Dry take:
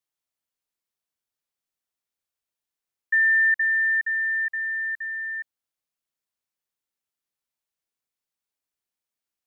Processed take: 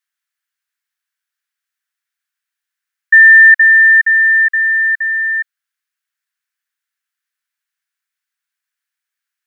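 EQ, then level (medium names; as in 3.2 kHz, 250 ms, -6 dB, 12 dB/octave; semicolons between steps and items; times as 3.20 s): resonant high-pass 1.6 kHz, resonance Q 3.7; +4.5 dB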